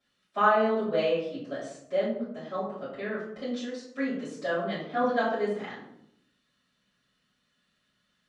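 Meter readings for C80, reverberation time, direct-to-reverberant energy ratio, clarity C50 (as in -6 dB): 6.5 dB, 0.70 s, -14.5 dB, 3.0 dB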